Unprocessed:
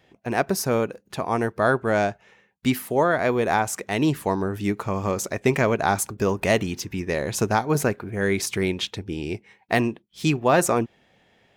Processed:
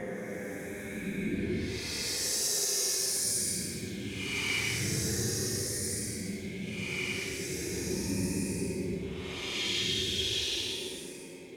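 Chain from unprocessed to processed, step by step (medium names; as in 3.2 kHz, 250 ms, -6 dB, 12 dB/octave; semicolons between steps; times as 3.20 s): compressor with a negative ratio -27 dBFS, ratio -0.5; two-band feedback delay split 320 Hz, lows 451 ms, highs 134 ms, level -5 dB; Paulstretch 19×, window 0.05 s, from 8.30 s; trim -8 dB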